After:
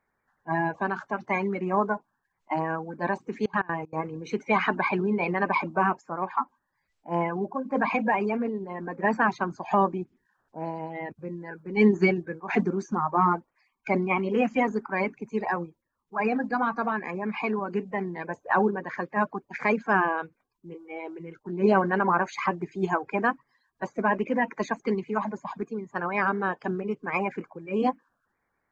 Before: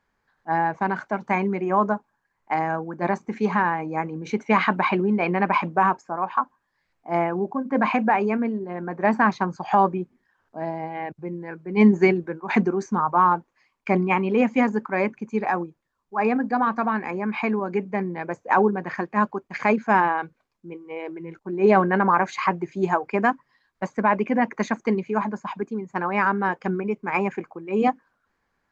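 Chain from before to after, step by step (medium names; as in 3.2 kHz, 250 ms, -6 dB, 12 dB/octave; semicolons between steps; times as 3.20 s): coarse spectral quantiser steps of 30 dB; 3.43–3.96 s: trance gate "x.xx.x.x" 191 bpm -24 dB; trim -3.5 dB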